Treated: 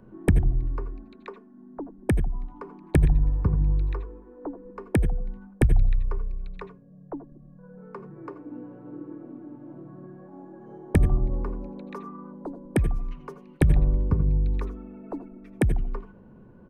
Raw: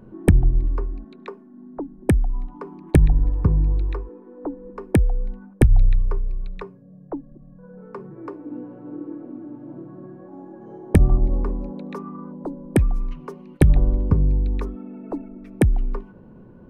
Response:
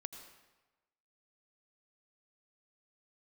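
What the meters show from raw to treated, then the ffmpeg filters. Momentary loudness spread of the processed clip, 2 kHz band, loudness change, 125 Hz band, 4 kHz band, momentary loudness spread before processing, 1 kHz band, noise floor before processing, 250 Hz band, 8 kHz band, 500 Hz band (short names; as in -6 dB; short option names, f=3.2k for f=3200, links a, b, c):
20 LU, -2.5 dB, -4.0 dB, -4.5 dB, -4.0 dB, 21 LU, -3.5 dB, -47 dBFS, -5.0 dB, -5.5 dB, -5.0 dB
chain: -filter_complex "[0:a]acrossover=split=300|2100[a][b][c];[a]aecho=1:1:81|162|243|324|405:0.266|0.12|0.0539|0.0242|0.0109[d];[b]crystalizer=i=5.5:c=0[e];[d][e][c]amix=inputs=3:normalize=0[f];[1:a]atrim=start_sample=2205,atrim=end_sample=4410[g];[f][g]afir=irnorm=-1:irlink=0,volume=-1.5dB"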